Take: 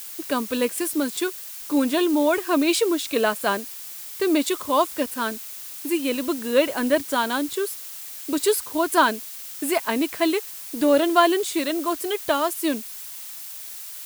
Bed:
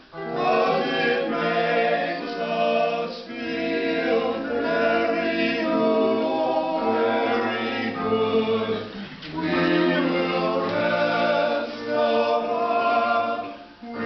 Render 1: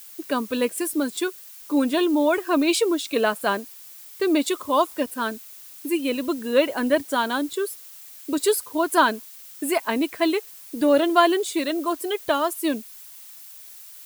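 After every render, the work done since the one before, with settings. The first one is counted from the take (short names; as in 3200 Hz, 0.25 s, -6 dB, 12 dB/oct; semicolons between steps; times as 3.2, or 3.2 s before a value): denoiser 8 dB, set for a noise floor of -37 dBFS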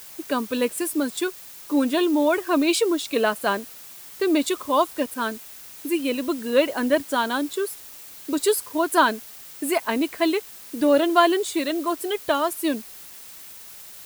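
bit-crush 7-bit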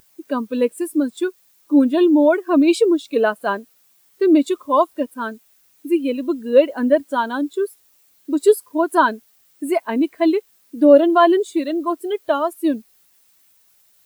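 maximiser +7.5 dB; spectral expander 1.5:1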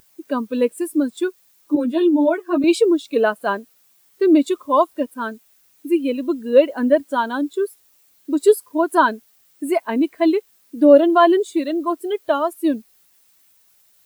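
1.75–2.64 ensemble effect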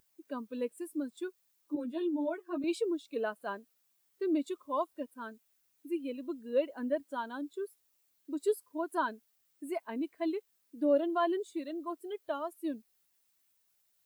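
gain -17 dB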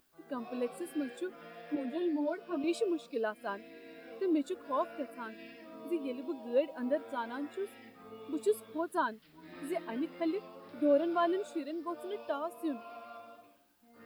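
add bed -27.5 dB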